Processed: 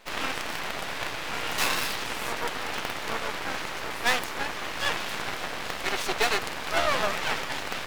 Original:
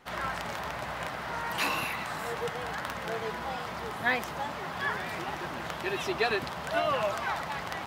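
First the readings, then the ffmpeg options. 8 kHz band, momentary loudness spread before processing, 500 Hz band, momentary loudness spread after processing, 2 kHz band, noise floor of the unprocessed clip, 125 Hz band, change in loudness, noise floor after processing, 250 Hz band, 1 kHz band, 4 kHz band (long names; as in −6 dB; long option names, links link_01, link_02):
+10.0 dB, 7 LU, 0.0 dB, 7 LU, +3.5 dB, −38 dBFS, −2.0 dB, +3.5 dB, −35 dBFS, +0.5 dB, +1.5 dB, +8.0 dB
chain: -af "aeval=exprs='0.2*(cos(1*acos(clip(val(0)/0.2,-1,1)))-cos(1*PI/2))+0.0891*(cos(4*acos(clip(val(0)/0.2,-1,1)))-cos(4*PI/2))+0.0398*(cos(5*acos(clip(val(0)/0.2,-1,1)))-cos(5*PI/2))':channel_layout=same,aeval=exprs='abs(val(0))':channel_layout=same,lowshelf=frequency=260:gain=-7.5,volume=1.5dB"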